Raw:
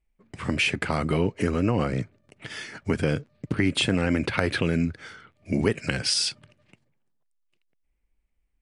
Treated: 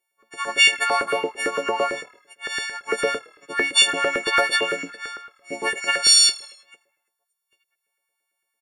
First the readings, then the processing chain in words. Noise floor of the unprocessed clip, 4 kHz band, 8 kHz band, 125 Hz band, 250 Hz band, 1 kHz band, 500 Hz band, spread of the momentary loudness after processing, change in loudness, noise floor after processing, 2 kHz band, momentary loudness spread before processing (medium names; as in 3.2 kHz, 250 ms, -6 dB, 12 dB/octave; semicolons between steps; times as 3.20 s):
-74 dBFS, +10.0 dB, +12.5 dB, -23.5 dB, -11.5 dB, +9.5 dB, +2.5 dB, 19 LU, +6.5 dB, -80 dBFS, +8.5 dB, 14 LU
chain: partials quantised in pitch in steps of 4 st; frequency-shifting echo 83 ms, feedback 60%, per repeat -38 Hz, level -23 dB; LFO high-pass saw up 8.9 Hz 410–1600 Hz